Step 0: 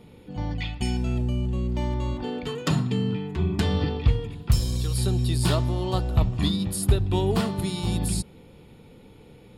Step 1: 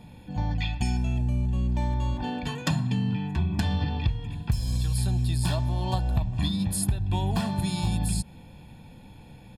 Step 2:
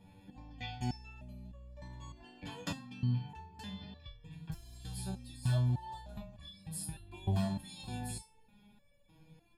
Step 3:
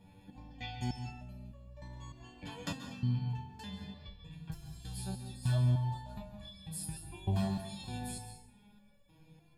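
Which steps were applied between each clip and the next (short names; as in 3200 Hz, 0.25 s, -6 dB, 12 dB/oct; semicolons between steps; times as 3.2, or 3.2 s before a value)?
comb 1.2 ms, depth 73%; compressor 6:1, threshold -22 dBFS, peak gain reduction 12.5 dB
stepped resonator 3.3 Hz 96–570 Hz; gain -1 dB
plate-style reverb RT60 0.7 s, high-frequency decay 0.8×, pre-delay 0.12 s, DRR 7.5 dB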